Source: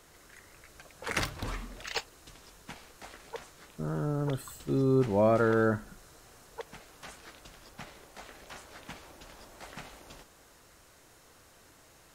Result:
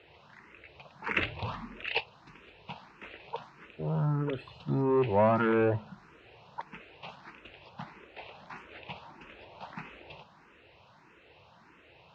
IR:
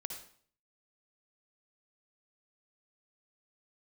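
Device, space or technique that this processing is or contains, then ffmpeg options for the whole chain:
barber-pole phaser into a guitar amplifier: -filter_complex "[0:a]equalizer=f=200:t=o:w=2.2:g=6,asplit=2[a][b];[b]afreqshift=1.6[c];[a][c]amix=inputs=2:normalize=1,asoftclip=type=tanh:threshold=-19.5dB,highpass=77,equalizer=f=270:t=q:w=4:g=-7,equalizer=f=930:t=q:w=4:g=7,equalizer=f=2.6k:t=q:w=4:g=10,lowpass=f=3.9k:w=0.5412,lowpass=f=3.9k:w=1.3066,volume=1.5dB"

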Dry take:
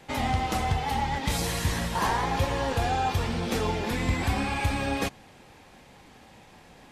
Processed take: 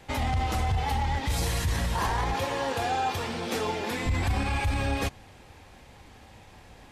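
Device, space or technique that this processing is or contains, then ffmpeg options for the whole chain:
car stereo with a boomy subwoofer: -filter_complex "[0:a]asettb=1/sr,asplit=3[a][b][c];[a]atrim=end=2.344[d];[b]atrim=start=2.34:end=4.06,asetpts=PTS-STARTPTS,afade=t=in:d=0.004:c=qsin,afade=t=out:st=1.716:d=0.004:c=qsin,highpass=220[e];[c]atrim=start=4.056[f];[d][e]acrossfade=d=0.004:c1=hsin:c2=qsin[g];[g][f]acrossfade=d=0.004:c1=qsin:c2=hsin,lowshelf=f=120:t=q:w=1.5:g=6.5,alimiter=limit=-19dB:level=0:latency=1:release=18"

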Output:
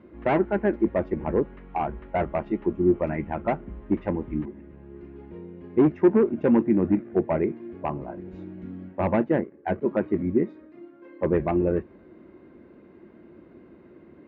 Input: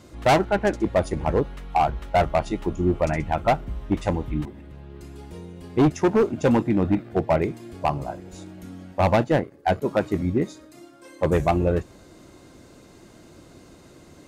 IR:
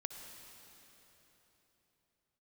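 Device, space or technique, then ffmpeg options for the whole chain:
bass cabinet: -filter_complex "[0:a]asettb=1/sr,asplit=3[a][b][c];[a]atrim=end=8.174[d];[b]atrim=start=8.17:end=8.89,asetpts=PTS-STARTPTS,afade=t=in:d=0.004:c=qsin,afade=t=out:st=0.716:d=0.004:c=qsin,bass=f=250:g=6,treble=f=4k:g=11[e];[c]atrim=start=8.886[f];[d][e]acrossfade=d=0.004:c1=hsin:c2=qsin[g];[g][f]acrossfade=d=0.004:c1=qsin:c2=hsin,highpass=63,equalizer=f=84:t=q:w=4:g=-3,equalizer=f=120:t=q:w=4:g=-9,equalizer=f=220:t=q:w=4:g=6,equalizer=f=360:t=q:w=4:g=7,equalizer=f=750:t=q:w=4:g=-5,equalizer=f=1.3k:t=q:w=4:g=-4,lowpass=f=2.2k:w=0.5412,lowpass=f=2.2k:w=1.3066,volume=-3.5dB"

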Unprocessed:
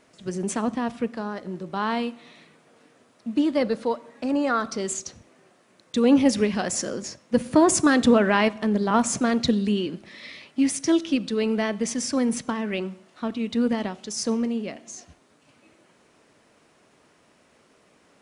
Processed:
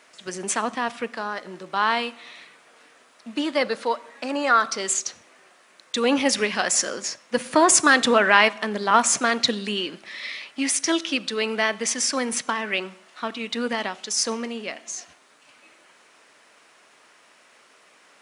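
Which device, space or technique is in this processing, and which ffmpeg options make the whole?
filter by subtraction: -filter_complex "[0:a]asplit=2[a][b];[b]lowpass=1.6k,volume=-1[c];[a][c]amix=inputs=2:normalize=0,volume=6.5dB"

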